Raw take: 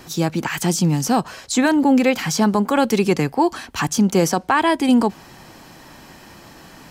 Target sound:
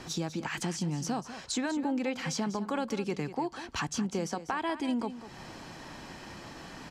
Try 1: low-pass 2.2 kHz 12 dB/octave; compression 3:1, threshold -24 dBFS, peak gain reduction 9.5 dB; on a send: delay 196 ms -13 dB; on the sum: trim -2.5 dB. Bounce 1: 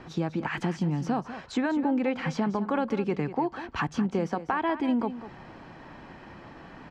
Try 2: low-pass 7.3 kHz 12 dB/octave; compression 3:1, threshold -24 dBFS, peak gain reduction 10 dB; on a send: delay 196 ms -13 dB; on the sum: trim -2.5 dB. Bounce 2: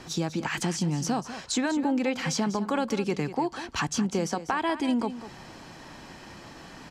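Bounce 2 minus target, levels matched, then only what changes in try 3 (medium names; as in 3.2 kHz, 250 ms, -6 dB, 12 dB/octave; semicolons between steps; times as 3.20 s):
compression: peak gain reduction -5 dB
change: compression 3:1, threshold -31.5 dBFS, peak gain reduction 15 dB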